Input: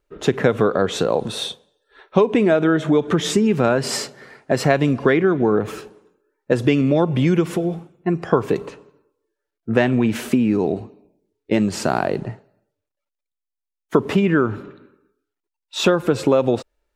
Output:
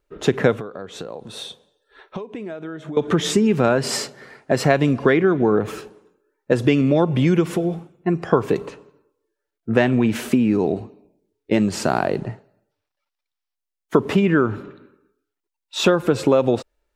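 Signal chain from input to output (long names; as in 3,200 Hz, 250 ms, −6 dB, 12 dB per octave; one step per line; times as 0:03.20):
0:00.53–0:02.97: downward compressor 5 to 1, threshold −31 dBFS, peak gain reduction 18.5 dB
0:12.71–0:13.55: gain on a spectral selection 670–6,000 Hz +8 dB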